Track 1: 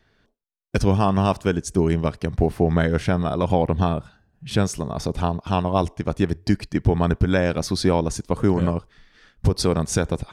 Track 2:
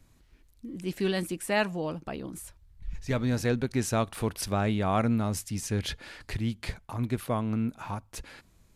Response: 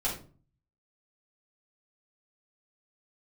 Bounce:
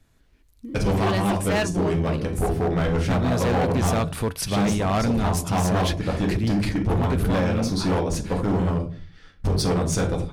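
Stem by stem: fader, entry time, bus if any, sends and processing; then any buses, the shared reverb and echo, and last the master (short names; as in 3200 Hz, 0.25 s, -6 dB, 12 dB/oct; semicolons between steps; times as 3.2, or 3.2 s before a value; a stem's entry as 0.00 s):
-10.5 dB, 0.00 s, send -3 dB, dry
+1.0 dB, 0.00 s, no send, dry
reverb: on, RT60 0.40 s, pre-delay 4 ms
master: AGC gain up to 9.5 dB; resonator 90 Hz, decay 0.21 s, harmonics odd, mix 40%; overloaded stage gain 18 dB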